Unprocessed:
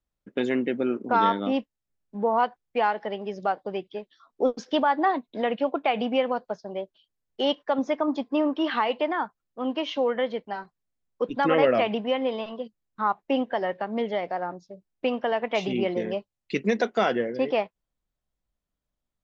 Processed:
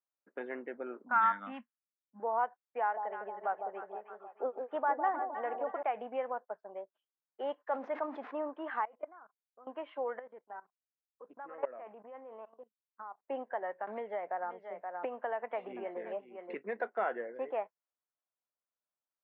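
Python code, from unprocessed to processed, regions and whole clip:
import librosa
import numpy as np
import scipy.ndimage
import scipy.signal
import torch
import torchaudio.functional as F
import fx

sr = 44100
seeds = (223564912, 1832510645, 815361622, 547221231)

y = fx.chain(x, sr, fx.env_lowpass(base_hz=400.0, full_db=-19.5),
    fx.curve_eq(hz=(110.0, 240.0, 390.0, 1400.0), db=(0, 7, -21, 8)), at=(1.04, 2.2))
y = fx.chain(y, sr, fx.bass_treble(bass_db=-3, treble_db=-9),
    fx.echo_alternate(ms=156, hz=930.0, feedback_pct=70, wet_db=-5.0), at=(2.81, 5.83))
y = fx.chain(y, sr, fx.crossing_spikes(level_db=-28.0),
    fx.sustainer(db_per_s=40.0), at=(7.67, 8.35))
y = fx.chain(y, sr, fx.bandpass_edges(low_hz=140.0, high_hz=2100.0),
    fx.level_steps(step_db=22),
    fx.notch_comb(f0_hz=900.0), at=(8.85, 9.67))
y = fx.chain(y, sr, fx.lowpass(hz=1600.0, slope=6),
    fx.level_steps(step_db=18),
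    fx.doppler_dist(depth_ms=0.16), at=(10.19, 13.24))
y = fx.chain(y, sr, fx.echo_single(ms=525, db=-16.5),
    fx.band_squash(depth_pct=100), at=(13.87, 16.56))
y = scipy.signal.sosfilt(scipy.signal.butter(4, 1600.0, 'lowpass', fs=sr, output='sos'), y)
y = fx.dynamic_eq(y, sr, hz=1200.0, q=2.5, threshold_db=-42.0, ratio=4.0, max_db=-4)
y = scipy.signal.sosfilt(scipy.signal.bessel(2, 890.0, 'highpass', norm='mag', fs=sr, output='sos'), y)
y = F.gain(torch.from_numpy(y), -3.5).numpy()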